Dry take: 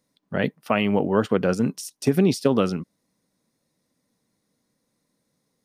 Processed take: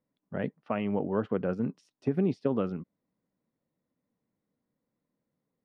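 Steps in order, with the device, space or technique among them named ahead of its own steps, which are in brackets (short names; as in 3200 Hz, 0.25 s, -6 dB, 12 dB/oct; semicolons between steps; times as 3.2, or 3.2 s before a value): phone in a pocket (LPF 3000 Hz 12 dB/oct; high shelf 2100 Hz -11 dB); gain -8 dB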